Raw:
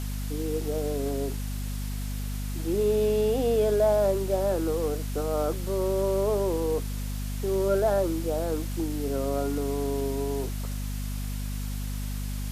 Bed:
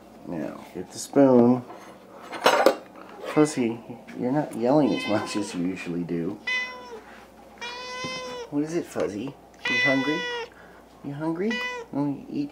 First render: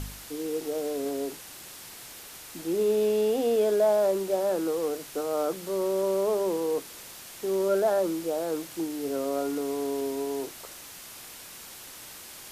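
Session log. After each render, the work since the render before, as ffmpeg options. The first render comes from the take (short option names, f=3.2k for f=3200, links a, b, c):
-af "bandreject=f=50:t=h:w=4,bandreject=f=100:t=h:w=4,bandreject=f=150:t=h:w=4,bandreject=f=200:t=h:w=4,bandreject=f=250:t=h:w=4"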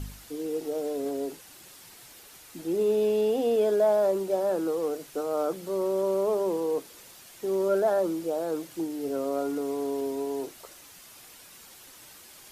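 -af "afftdn=nr=7:nf=-45"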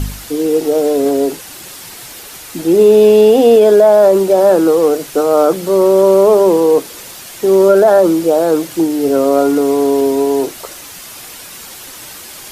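-af "acontrast=34,alimiter=level_in=12.5dB:limit=-1dB:release=50:level=0:latency=1"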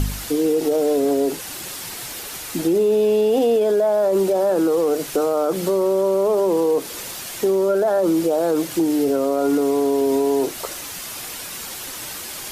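-af "alimiter=limit=-8dB:level=0:latency=1:release=61,acompressor=threshold=-21dB:ratio=1.5"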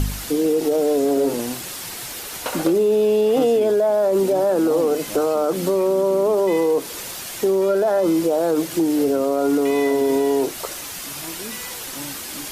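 -filter_complex "[1:a]volume=-10dB[a];[0:a][a]amix=inputs=2:normalize=0"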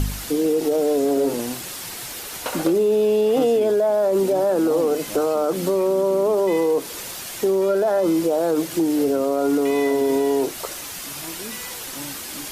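-af "volume=-1dB"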